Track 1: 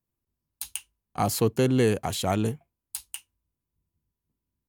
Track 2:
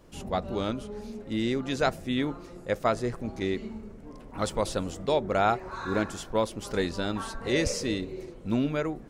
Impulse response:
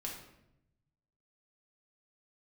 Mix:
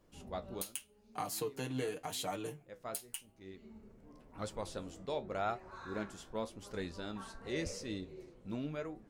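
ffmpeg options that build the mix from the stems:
-filter_complex "[0:a]highpass=frequency=370:poles=1,aecho=1:1:6.6:0.88,acompressor=threshold=-32dB:ratio=4,volume=-1.5dB,asplit=3[link_01][link_02][link_03];[link_02]volume=-20dB[link_04];[1:a]volume=-8.5dB[link_05];[link_03]apad=whole_len=400869[link_06];[link_05][link_06]sidechaincompress=threshold=-50dB:ratio=8:attack=7.9:release=518[link_07];[2:a]atrim=start_sample=2205[link_08];[link_04][link_08]afir=irnorm=-1:irlink=0[link_09];[link_01][link_07][link_09]amix=inputs=3:normalize=0,flanger=delay=9:depth=7.6:regen=59:speed=0.89:shape=triangular"

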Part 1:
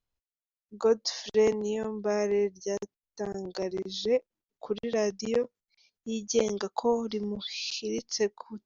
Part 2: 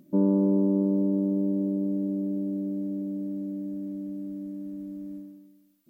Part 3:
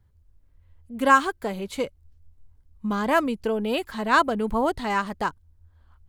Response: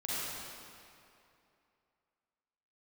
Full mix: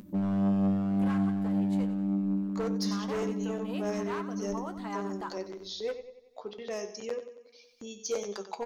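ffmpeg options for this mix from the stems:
-filter_complex "[0:a]bass=frequency=250:gain=-10,treble=frequency=4000:gain=1,bandreject=frequency=60:width_type=h:width=6,bandreject=frequency=120:width_type=h:width=6,bandreject=frequency=180:width_type=h:width=6,bandreject=frequency=240:width_type=h:width=6,bandreject=frequency=300:width_type=h:width=6,bandreject=frequency=360:width_type=h:width=6,bandreject=frequency=420:width_type=h:width=6,bandreject=frequency=480:width_type=h:width=6,adelay=1750,volume=-1dB,asplit=2[link_01][link_02];[link_02]volume=-12.5dB[link_03];[1:a]equalizer=frequency=190:width=2.6:gain=8.5,volume=-7dB,asplit=2[link_04][link_05];[link_05]volume=-8.5dB[link_06];[2:a]equalizer=frequency=1100:width=1.5:gain=7.5,acompressor=threshold=-20dB:ratio=6,volume=-11dB,asplit=2[link_07][link_08];[link_08]volume=-12dB[link_09];[link_03][link_06][link_09]amix=inputs=3:normalize=0,aecho=0:1:92|184|276|368|460|552:1|0.41|0.168|0.0689|0.0283|0.0116[link_10];[link_01][link_04][link_07][link_10]amix=inputs=4:normalize=0,acompressor=mode=upward:threshold=-34dB:ratio=2.5,asoftclip=type=hard:threshold=-23dB,flanger=delay=9.7:depth=1.4:regen=61:speed=1.8:shape=triangular"

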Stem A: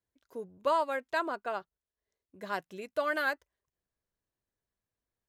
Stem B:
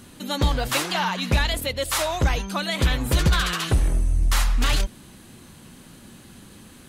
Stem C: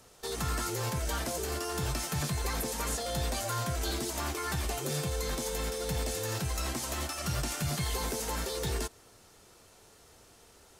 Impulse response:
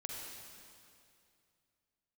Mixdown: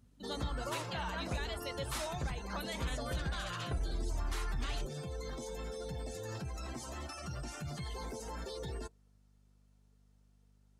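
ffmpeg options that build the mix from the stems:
-filter_complex "[0:a]volume=-13dB[link_01];[1:a]volume=-14dB[link_02];[2:a]highshelf=frequency=7300:gain=-3,alimiter=level_in=4.5dB:limit=-24dB:level=0:latency=1:release=24,volume=-4.5dB,volume=-4.5dB[link_03];[link_01][link_02][link_03]amix=inputs=3:normalize=0,afftdn=noise_reduction=19:noise_floor=-47,aeval=exprs='val(0)+0.000562*(sin(2*PI*50*n/s)+sin(2*PI*2*50*n/s)/2+sin(2*PI*3*50*n/s)/3+sin(2*PI*4*50*n/s)/4+sin(2*PI*5*50*n/s)/5)':channel_layout=same,alimiter=level_in=3.5dB:limit=-24dB:level=0:latency=1:release=448,volume=-3.5dB"

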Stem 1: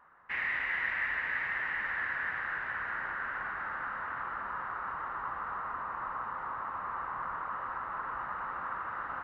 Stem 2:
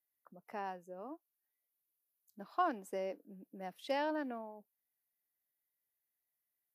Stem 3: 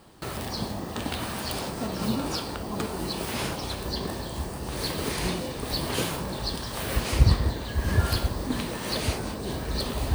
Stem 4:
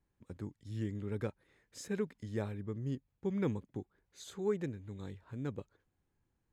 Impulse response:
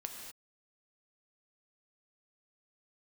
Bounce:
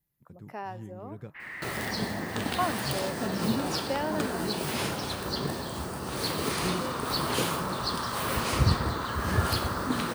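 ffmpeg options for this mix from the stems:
-filter_complex "[0:a]adelay=1050,volume=1dB,asplit=2[link_01][link_02];[link_02]volume=-18dB[link_03];[1:a]volume=3dB,asplit=2[link_04][link_05];[link_05]volume=-15.5dB[link_06];[2:a]highpass=100,adelay=1400,volume=-2.5dB,asplit=2[link_07][link_08];[link_08]volume=-7.5dB[link_09];[3:a]equalizer=frequency=150:width_type=o:width=0.56:gain=13.5,volume=-8.5dB,asplit=2[link_10][link_11];[link_11]apad=whole_len=453630[link_12];[link_01][link_12]sidechaincompress=threshold=-50dB:ratio=8:attack=16:release=1290[link_13];[4:a]atrim=start_sample=2205[link_14];[link_03][link_06][link_09]amix=inputs=3:normalize=0[link_15];[link_15][link_14]afir=irnorm=-1:irlink=0[link_16];[link_13][link_04][link_07][link_10][link_16]amix=inputs=5:normalize=0"

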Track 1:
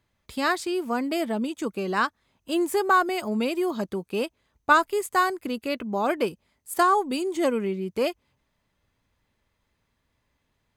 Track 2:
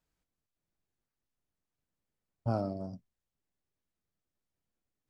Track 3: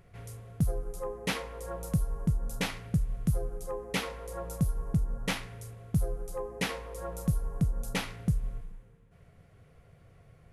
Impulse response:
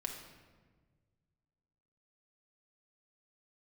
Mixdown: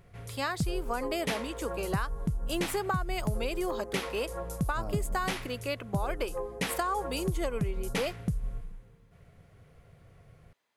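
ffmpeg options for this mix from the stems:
-filter_complex "[0:a]highpass=420,acompressor=threshold=-22dB:ratio=6,volume=-2dB[link_01];[1:a]adelay=2300,volume=-7dB[link_02];[2:a]volume=1dB[link_03];[link_01][link_02][link_03]amix=inputs=3:normalize=0,acompressor=threshold=-26dB:ratio=6"

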